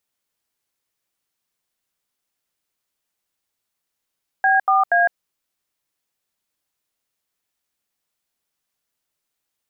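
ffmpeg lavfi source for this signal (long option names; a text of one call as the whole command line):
ffmpeg -f lavfi -i "aevalsrc='0.168*clip(min(mod(t,0.238),0.158-mod(t,0.238))/0.002,0,1)*(eq(floor(t/0.238),0)*(sin(2*PI*770*mod(t,0.238))+sin(2*PI*1633*mod(t,0.238)))+eq(floor(t/0.238),1)*(sin(2*PI*770*mod(t,0.238))+sin(2*PI*1209*mod(t,0.238)))+eq(floor(t/0.238),2)*(sin(2*PI*697*mod(t,0.238))+sin(2*PI*1633*mod(t,0.238))))':duration=0.714:sample_rate=44100" out.wav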